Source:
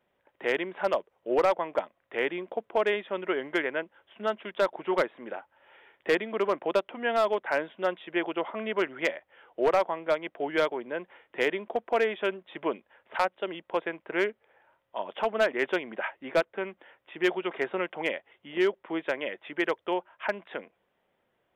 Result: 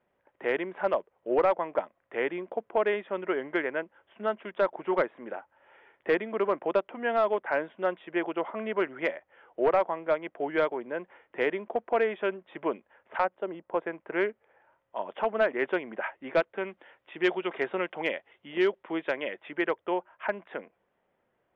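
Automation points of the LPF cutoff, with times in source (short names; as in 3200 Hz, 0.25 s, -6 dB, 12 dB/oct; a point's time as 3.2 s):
13.17 s 2200 Hz
13.5 s 1100 Hz
14.14 s 2200 Hz
16.01 s 2200 Hz
16.69 s 4500 Hz
19.08 s 4500 Hz
19.78 s 2200 Hz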